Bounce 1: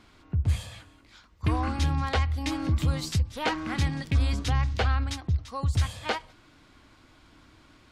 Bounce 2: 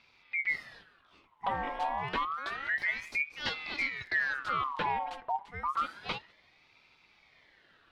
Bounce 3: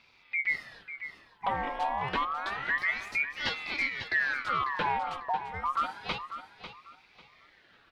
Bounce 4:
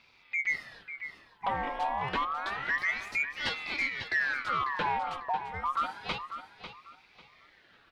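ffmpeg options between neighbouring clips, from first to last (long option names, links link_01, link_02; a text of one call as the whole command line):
ffmpeg -i in.wav -af "highshelf=frequency=3400:width_type=q:width=1.5:gain=-11.5,aeval=exprs='val(0)*sin(2*PI*1600*n/s+1600*0.5/0.29*sin(2*PI*0.29*n/s))':channel_layout=same,volume=-5dB" out.wav
ffmpeg -i in.wav -af "aecho=1:1:546|1092|1638:0.282|0.0705|0.0176,volume=2dB" out.wav
ffmpeg -i in.wav -af "asoftclip=type=tanh:threshold=-18dB" out.wav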